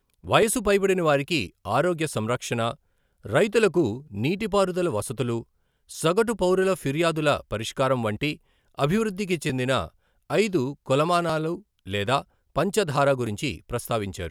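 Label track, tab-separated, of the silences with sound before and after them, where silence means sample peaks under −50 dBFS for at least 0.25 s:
2.750000	3.240000	silence
5.430000	5.890000	silence
8.370000	8.750000	silence
9.900000	10.300000	silence
12.240000	12.560000	silence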